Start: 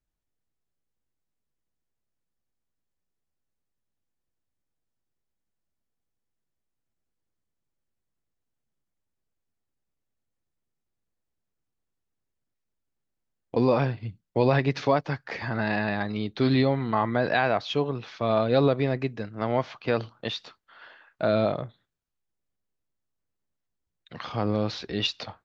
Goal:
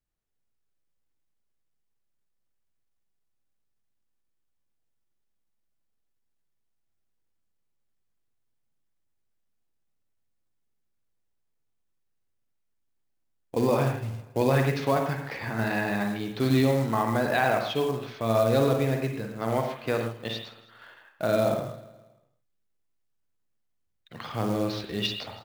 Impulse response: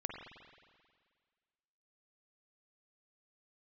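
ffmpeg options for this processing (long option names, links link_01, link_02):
-filter_complex "[0:a]aecho=1:1:161|322|483|644:0.126|0.0579|0.0266|0.0123[link_01];[1:a]atrim=start_sample=2205,atrim=end_sample=6615[link_02];[link_01][link_02]afir=irnorm=-1:irlink=0,acrusher=bits=5:mode=log:mix=0:aa=0.000001"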